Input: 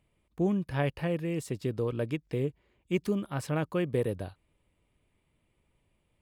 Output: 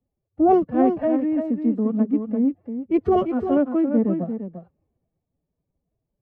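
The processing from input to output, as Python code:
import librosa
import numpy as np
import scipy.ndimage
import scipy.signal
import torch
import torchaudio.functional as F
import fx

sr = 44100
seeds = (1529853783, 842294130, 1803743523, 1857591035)

p1 = scipy.signal.sosfilt(scipy.signal.butter(2, 1100.0, 'lowpass', fs=sr, output='sos'), x)
p2 = fx.level_steps(p1, sr, step_db=18)
p3 = p1 + F.gain(torch.from_numpy(p2), -2.0).numpy()
p4 = fx.small_body(p3, sr, hz=(250.0, 650.0), ring_ms=25, db=13)
p5 = fx.pitch_keep_formants(p4, sr, semitones=10.5)
p6 = p5 + fx.echo_single(p5, sr, ms=346, db=-6.5, dry=0)
p7 = fx.band_widen(p6, sr, depth_pct=40)
y = F.gain(torch.from_numpy(p7), 1.0).numpy()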